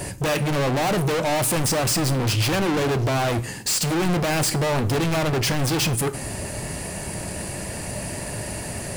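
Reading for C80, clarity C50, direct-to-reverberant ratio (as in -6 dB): 21.0 dB, 17.5 dB, 11.5 dB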